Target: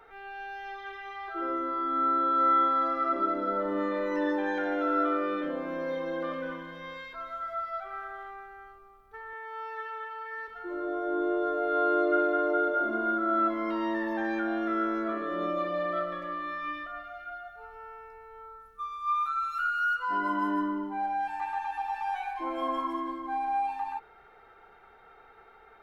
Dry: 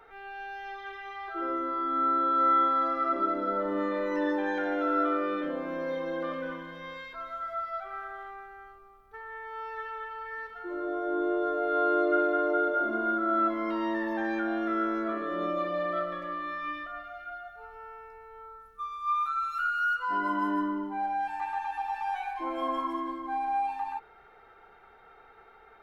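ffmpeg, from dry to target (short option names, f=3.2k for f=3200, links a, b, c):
-filter_complex "[0:a]asettb=1/sr,asplit=3[a][b][c];[a]atrim=end=9.334[d];[b]atrim=start=9.33:end=10.48,asetpts=PTS-STARTPTS,afade=t=in:d=0.004:c=qsin,afade=t=out:st=1.146:d=0.004:c=qsin,highpass=260[e];[c]atrim=start=10.476[f];[d][e]acrossfade=d=0.004:c1=hsin:c2=qsin[g];[g][f]acrossfade=d=0.004:c1=qsin:c2=hsin"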